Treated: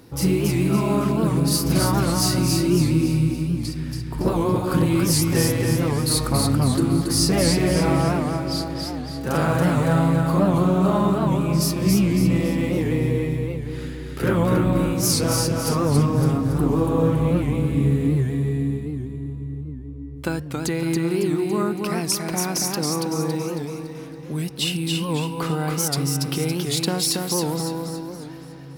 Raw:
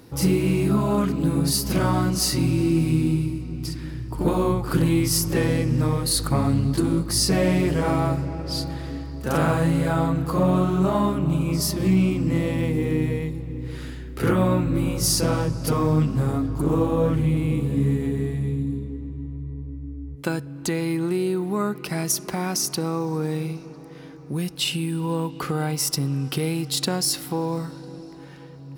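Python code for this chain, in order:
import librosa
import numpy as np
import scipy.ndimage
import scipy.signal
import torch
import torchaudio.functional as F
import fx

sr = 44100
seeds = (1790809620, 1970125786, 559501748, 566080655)

p1 = x + fx.echo_feedback(x, sr, ms=279, feedback_pct=44, wet_db=-3.5, dry=0)
y = fx.record_warp(p1, sr, rpm=78.0, depth_cents=160.0)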